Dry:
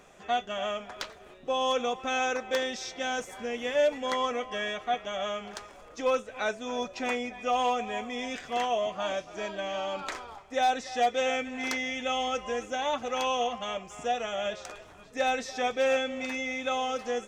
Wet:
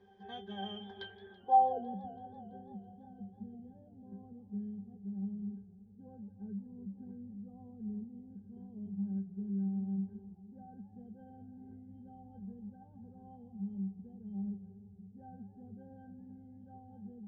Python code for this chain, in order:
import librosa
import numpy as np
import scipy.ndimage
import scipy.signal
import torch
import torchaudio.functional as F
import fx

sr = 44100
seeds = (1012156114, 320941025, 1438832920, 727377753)

y = fx.octave_resonator(x, sr, note='G', decay_s=0.22)
y = fx.filter_sweep_lowpass(y, sr, from_hz=5100.0, to_hz=180.0, start_s=0.93, end_s=2.03, q=3.3)
y = fx.echo_warbled(y, sr, ms=166, feedback_pct=75, rate_hz=2.8, cents=173, wet_db=-19)
y = y * librosa.db_to_amplitude(6.5)